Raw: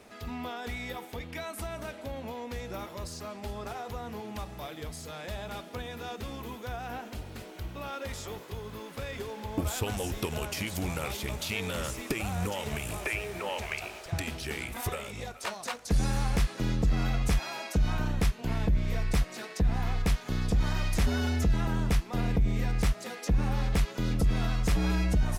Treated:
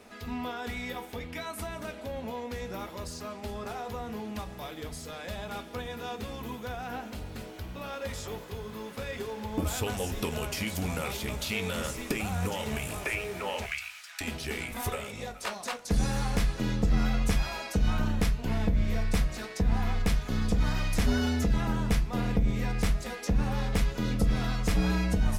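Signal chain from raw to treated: 13.66–14.21 s: high-pass 1.4 kHz 24 dB/octave; reverberation RT60 0.25 s, pre-delay 4 ms, DRR 7 dB

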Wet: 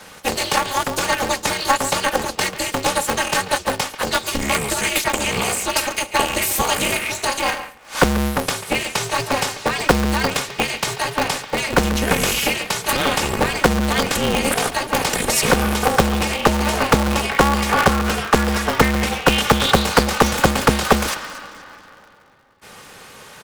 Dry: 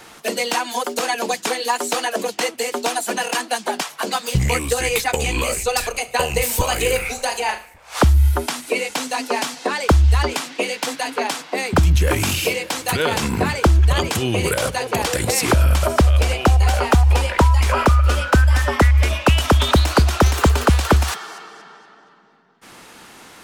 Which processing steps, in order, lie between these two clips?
high-pass 120 Hz 12 dB/octave; comb 3 ms, depth 72%; speakerphone echo 140 ms, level -12 dB; polarity switched at an audio rate 140 Hz

